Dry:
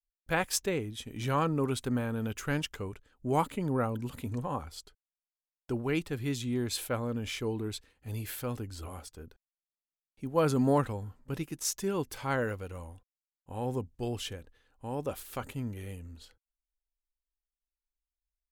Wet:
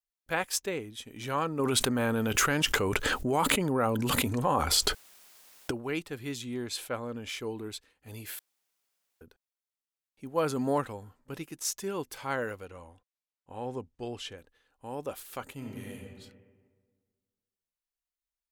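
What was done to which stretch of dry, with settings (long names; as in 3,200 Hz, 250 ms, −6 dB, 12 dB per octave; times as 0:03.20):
0:01.59–0:05.71: envelope flattener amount 100%
0:06.56–0:07.29: high-shelf EQ 12,000 Hz −9.5 dB
0:08.39–0:09.21: fill with room tone
0:12.65–0:14.38: high-frequency loss of the air 55 metres
0:15.56–0:15.99: thrown reverb, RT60 1.6 s, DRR −1.5 dB
whole clip: low-shelf EQ 180 Hz −12 dB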